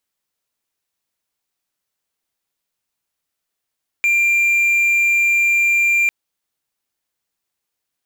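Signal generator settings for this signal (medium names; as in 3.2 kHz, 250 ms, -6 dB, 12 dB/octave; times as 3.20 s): tone triangle 2.38 kHz -10.5 dBFS 2.05 s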